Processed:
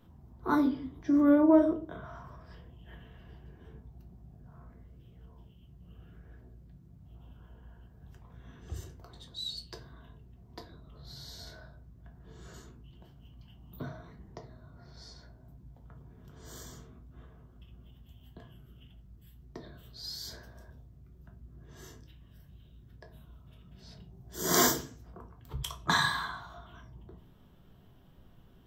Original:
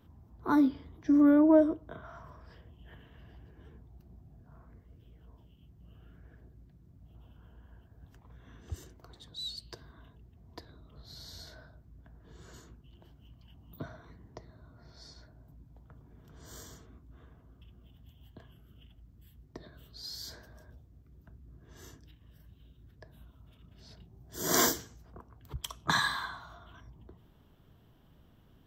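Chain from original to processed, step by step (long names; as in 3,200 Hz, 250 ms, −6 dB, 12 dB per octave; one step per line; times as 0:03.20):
rectangular room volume 180 cubic metres, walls furnished, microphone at 1 metre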